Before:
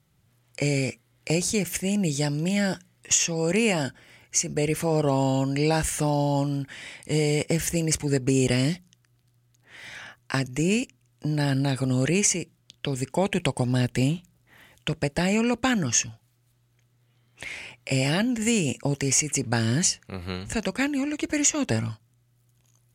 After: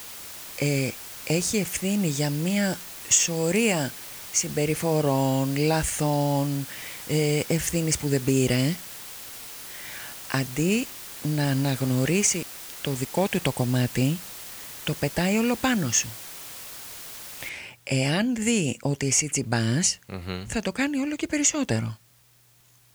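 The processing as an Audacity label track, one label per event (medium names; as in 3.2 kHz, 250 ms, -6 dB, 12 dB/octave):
2.630000	3.840000	peaking EQ 8.1 kHz +6.5 dB 0.32 oct
11.440000	13.410000	small samples zeroed under -35.5 dBFS
17.490000	17.490000	noise floor step -40 dB -60 dB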